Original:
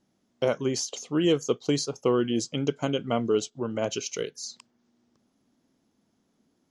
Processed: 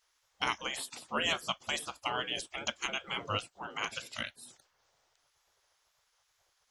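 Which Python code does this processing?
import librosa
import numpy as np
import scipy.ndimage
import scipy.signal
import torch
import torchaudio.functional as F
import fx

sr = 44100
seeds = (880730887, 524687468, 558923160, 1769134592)

y = fx.wow_flutter(x, sr, seeds[0], rate_hz=2.1, depth_cents=52.0)
y = fx.spec_gate(y, sr, threshold_db=-20, keep='weak')
y = y * 10.0 ** (6.5 / 20.0)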